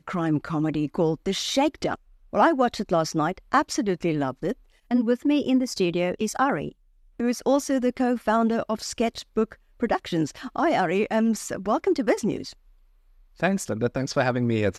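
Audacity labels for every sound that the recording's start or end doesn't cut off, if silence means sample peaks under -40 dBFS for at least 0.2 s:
2.330000	4.530000	sound
4.910000	6.720000	sound
7.200000	9.540000	sound
9.800000	12.530000	sound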